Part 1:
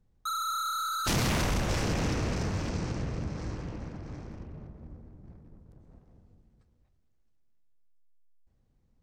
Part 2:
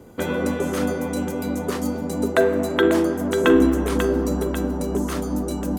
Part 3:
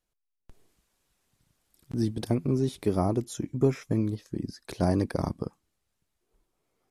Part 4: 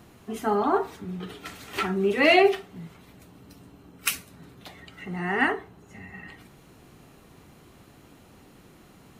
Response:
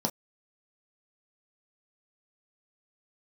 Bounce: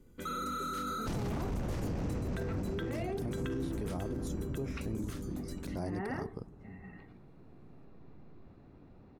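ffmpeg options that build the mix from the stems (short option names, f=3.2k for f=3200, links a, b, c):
-filter_complex "[0:a]volume=-0.5dB[a];[1:a]equalizer=f=760:w=1.6:g=-14.5,volume=-16dB[b];[2:a]adelay=950,volume=-10dB[c];[3:a]lowpass=f=4.5k:w=0.5412,lowpass=f=4.5k:w=1.3066,bandreject=f=3.1k:w=6.3,adelay=700,volume=-10.5dB[d];[a][d]amix=inputs=2:normalize=0,tiltshelf=f=1.1k:g=7.5,acompressor=threshold=-38dB:ratio=2,volume=0dB[e];[b][c][e]amix=inputs=3:normalize=0,alimiter=level_in=4.5dB:limit=-24dB:level=0:latency=1:release=22,volume=-4.5dB"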